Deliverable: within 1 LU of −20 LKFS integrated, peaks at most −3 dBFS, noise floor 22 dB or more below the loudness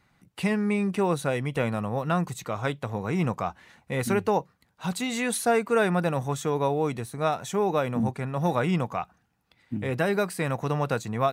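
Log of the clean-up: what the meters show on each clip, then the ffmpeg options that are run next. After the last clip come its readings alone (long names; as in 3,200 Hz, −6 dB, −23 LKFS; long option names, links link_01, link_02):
integrated loudness −27.5 LKFS; sample peak −12.5 dBFS; target loudness −20.0 LKFS
→ -af "volume=7.5dB"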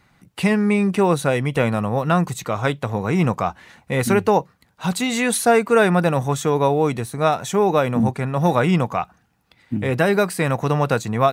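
integrated loudness −20.0 LKFS; sample peak −5.0 dBFS; background noise floor −61 dBFS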